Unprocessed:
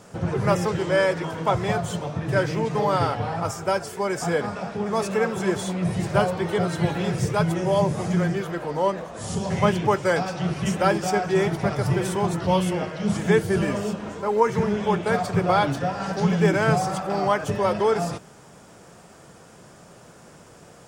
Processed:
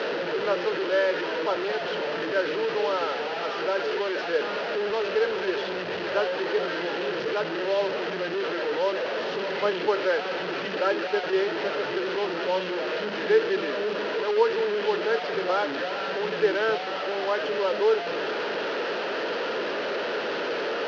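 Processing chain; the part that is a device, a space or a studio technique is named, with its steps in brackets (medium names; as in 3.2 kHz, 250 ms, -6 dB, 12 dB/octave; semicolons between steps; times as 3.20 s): digital answering machine (band-pass 310–3300 Hz; one-bit delta coder 32 kbps, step -19 dBFS; cabinet simulation 380–3900 Hz, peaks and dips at 430 Hz +4 dB, 750 Hz -9 dB, 1.1 kHz -9 dB, 2.2 kHz -7 dB, 3.6 kHz -6 dB); 4.90–6.25 s: resonant low shelf 120 Hz +8.5 dB, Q 1.5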